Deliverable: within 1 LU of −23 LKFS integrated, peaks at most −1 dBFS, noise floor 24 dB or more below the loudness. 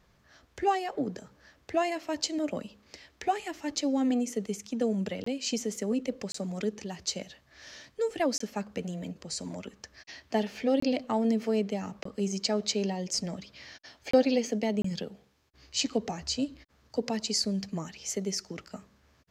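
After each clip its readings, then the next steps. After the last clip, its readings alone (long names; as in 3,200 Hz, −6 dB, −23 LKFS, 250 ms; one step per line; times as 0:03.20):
number of dropouts 7; longest dropout 24 ms; integrated loudness −31.0 LKFS; sample peak −11.0 dBFS; target loudness −23.0 LKFS
→ repair the gap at 0:05.24/0:06.32/0:08.38/0:10.80/0:12.03/0:14.11/0:14.82, 24 ms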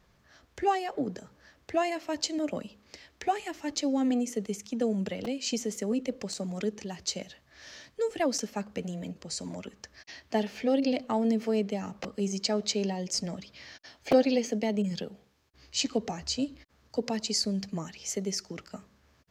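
number of dropouts 0; integrated loudness −31.0 LKFS; sample peak −11.0 dBFS; target loudness −23.0 LKFS
→ level +8 dB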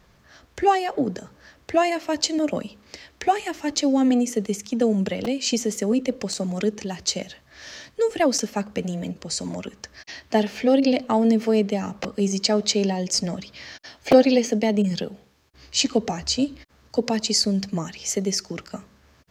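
integrated loudness −23.0 LKFS; sample peak −3.0 dBFS; background noise floor −57 dBFS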